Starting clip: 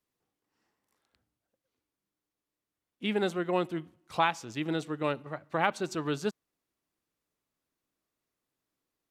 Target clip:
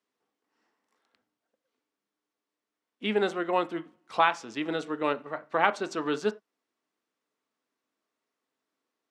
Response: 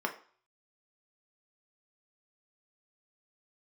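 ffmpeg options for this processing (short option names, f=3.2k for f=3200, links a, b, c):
-filter_complex "[0:a]highpass=210,lowpass=7.1k,asplit=2[a][b];[1:a]atrim=start_sample=2205,afade=t=out:st=0.15:d=0.01,atrim=end_sample=7056[c];[b][c]afir=irnorm=-1:irlink=0,volume=-10dB[d];[a][d]amix=inputs=2:normalize=0"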